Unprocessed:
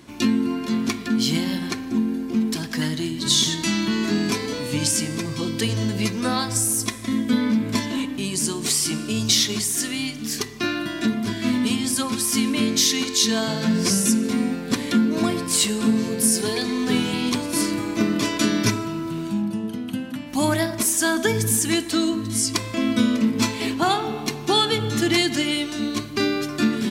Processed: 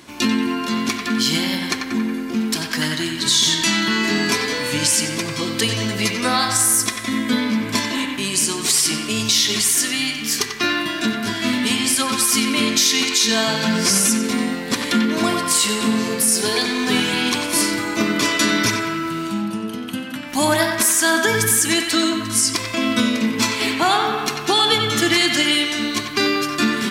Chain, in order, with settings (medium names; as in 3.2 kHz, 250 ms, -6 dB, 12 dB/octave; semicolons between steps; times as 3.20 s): bass shelf 410 Hz -9.5 dB; peak limiter -13.5 dBFS, peak gain reduction 7.5 dB; on a send: band-passed feedback delay 92 ms, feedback 72%, band-pass 1.7 kHz, level -4 dB; on the sum: trim +7 dB